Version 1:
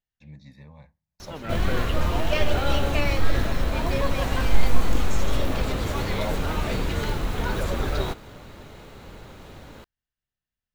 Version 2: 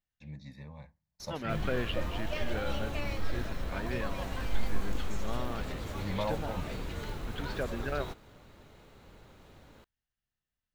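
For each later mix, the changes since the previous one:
background −12.0 dB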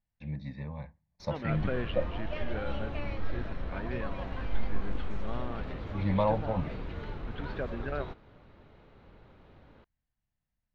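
first voice +8.0 dB
master: add high-frequency loss of the air 290 metres

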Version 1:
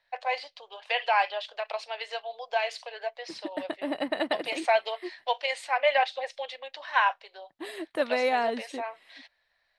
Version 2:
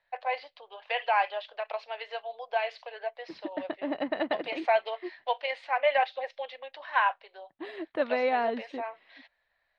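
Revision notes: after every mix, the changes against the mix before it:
master: add high-frequency loss of the air 270 metres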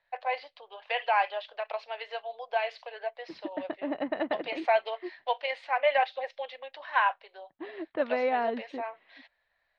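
second voice: add high-frequency loss of the air 220 metres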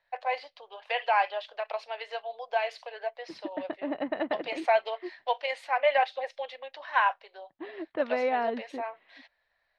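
first voice: remove Chebyshev low-pass filter 3,800 Hz, order 2

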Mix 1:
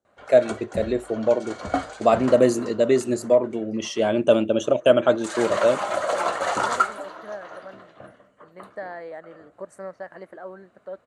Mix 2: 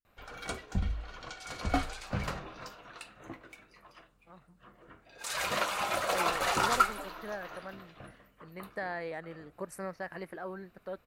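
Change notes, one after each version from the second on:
first voice: muted
background −5.0 dB
master: remove loudspeaker in its box 130–8,500 Hz, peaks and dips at 160 Hz −6 dB, 600 Hz +7 dB, 2,500 Hz −10 dB, 3,700 Hz −5 dB, 5,200 Hz −9 dB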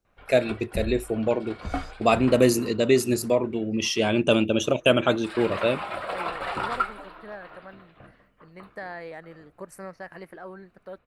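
first voice: unmuted
background: add moving average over 7 samples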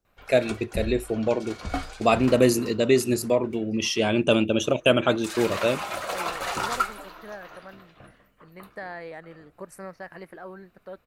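background: remove moving average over 7 samples

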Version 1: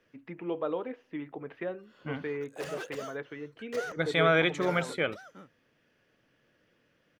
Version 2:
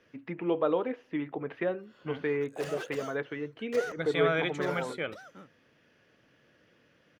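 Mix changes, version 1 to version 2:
first voice +5.0 dB
second voice −5.0 dB

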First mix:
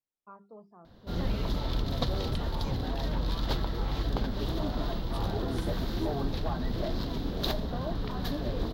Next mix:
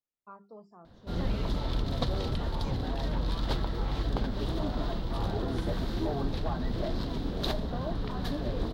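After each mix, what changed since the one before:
first voice: remove high-frequency loss of the air 300 metres
background: add parametric band 8,800 Hz +12 dB 0.41 octaves
master: add high-shelf EQ 7,200 Hz −10.5 dB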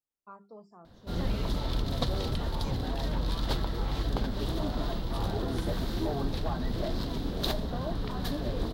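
master: add high-shelf EQ 7,200 Hz +10.5 dB

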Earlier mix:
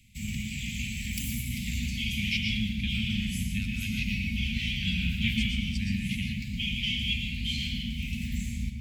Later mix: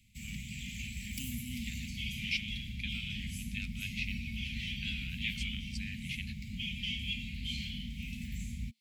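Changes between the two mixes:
first voice: add high-pass filter 340 Hz 24 dB per octave
background −5.0 dB
reverb: off

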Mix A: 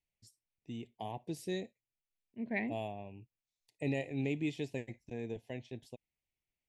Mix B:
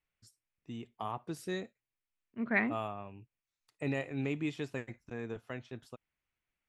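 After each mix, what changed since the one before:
second voice +4.0 dB
master: remove Butterworth band-reject 1,300 Hz, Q 1.1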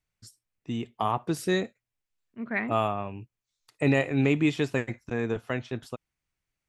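first voice +11.5 dB

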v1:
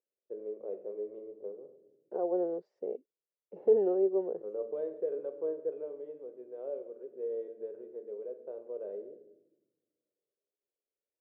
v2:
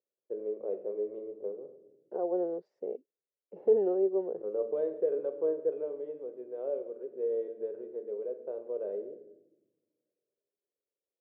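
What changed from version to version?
first voice +4.5 dB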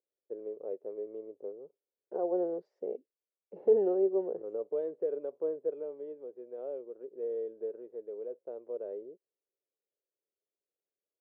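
reverb: off

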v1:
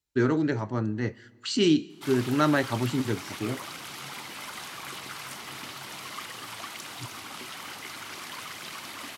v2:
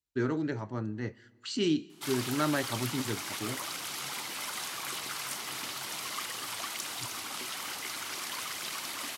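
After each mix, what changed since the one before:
speech −6.5 dB
background: add bass and treble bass −5 dB, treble +6 dB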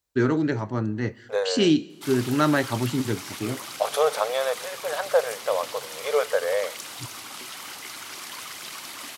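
first voice +8.5 dB
second voice: unmuted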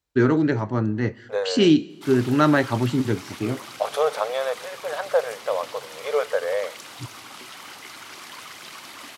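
first voice +3.5 dB
master: add high-shelf EQ 5,200 Hz −8.5 dB

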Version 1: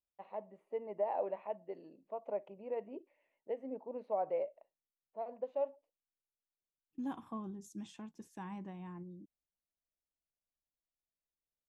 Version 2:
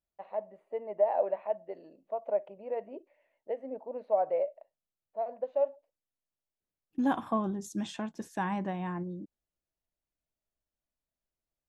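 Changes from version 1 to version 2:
second voice +10.5 dB
master: add graphic EQ with 15 bands 630 Hz +9 dB, 1,600 Hz +7 dB, 4,000 Hz +4 dB

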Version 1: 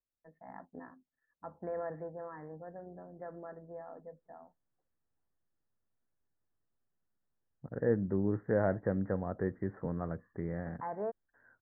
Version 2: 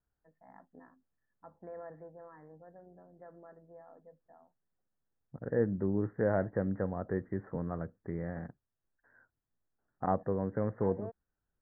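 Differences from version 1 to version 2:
first voice −7.5 dB
second voice: entry −2.30 s

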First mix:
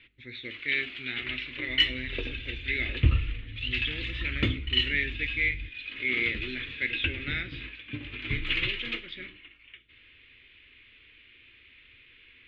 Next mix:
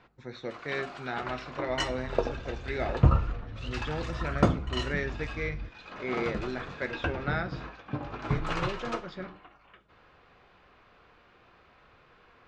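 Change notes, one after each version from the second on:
master: remove drawn EQ curve 110 Hz 0 dB, 170 Hz −14 dB, 270 Hz 0 dB, 440 Hz −9 dB, 770 Hz −25 dB, 1,400 Hz −11 dB, 2,100 Hz +12 dB, 3,400 Hz +13 dB, 5,400 Hz −14 dB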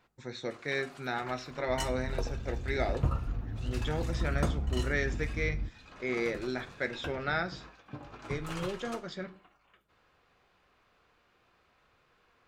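first sound −10.0 dB
second sound +3.5 dB
master: remove high-frequency loss of the air 150 metres

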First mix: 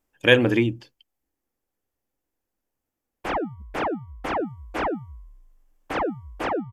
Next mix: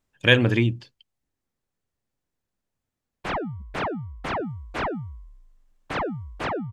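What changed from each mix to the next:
master: add thirty-one-band graphic EQ 100 Hz +11 dB, 160 Hz +9 dB, 315 Hz −6 dB, 500 Hz −4 dB, 800 Hz −4 dB, 4,000 Hz +6 dB, 12,500 Hz −11 dB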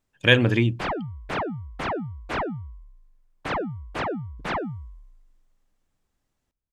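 background: entry −2.45 s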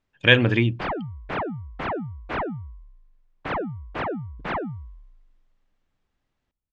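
speech: add high-shelf EQ 2,400 Hz +7.5 dB
master: add low-pass filter 3,100 Hz 12 dB per octave

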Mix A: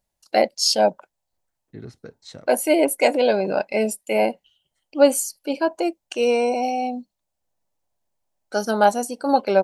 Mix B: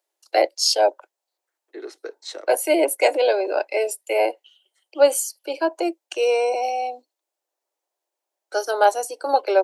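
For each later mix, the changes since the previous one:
second voice +7.5 dB
master: add Butterworth high-pass 320 Hz 72 dB per octave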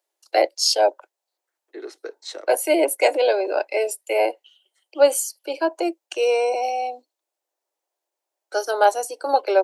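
nothing changed

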